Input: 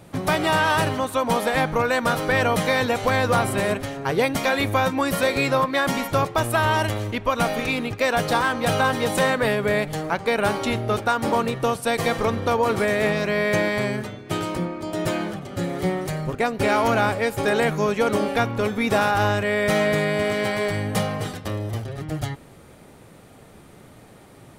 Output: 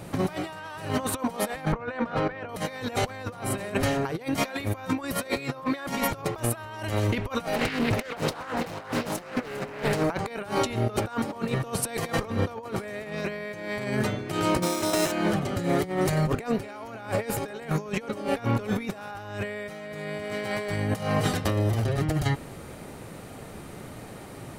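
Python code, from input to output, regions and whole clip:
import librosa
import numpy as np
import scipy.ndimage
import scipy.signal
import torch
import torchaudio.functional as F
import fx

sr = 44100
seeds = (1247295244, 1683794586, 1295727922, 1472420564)

y = fx.chain(x, sr, fx.lowpass(hz=2600.0, slope=12),
    fx.hum_notches(base_hz=50, count=10), at=(1.72, 2.49))
y = fx.chain(y, sr, fx.echo_single(ms=402, db=-9.5),
    fx.doppler_dist(depth_ms=0.8), at=(7.53, 10.04))
y = fx.chain(y, sr, fx.highpass(hz=370.0, slope=6),
    fx.sample_hold(seeds[0], rate_hz=4600.0, jitter_pct=0),
    fx.peak_eq(hz=7800.0, db=7.5, octaves=1.6), at=(14.62, 15.12))
y = fx.notch(y, sr, hz=3400.0, q=21.0)
y = fx.over_compress(y, sr, threshold_db=-28.0, ratio=-0.5)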